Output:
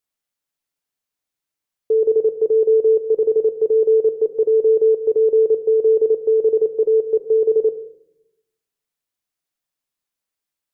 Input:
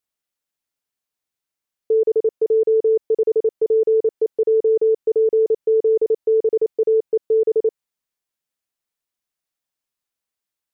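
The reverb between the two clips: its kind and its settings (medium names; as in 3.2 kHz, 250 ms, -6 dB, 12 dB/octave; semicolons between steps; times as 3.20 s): simulated room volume 230 m³, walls mixed, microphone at 0.33 m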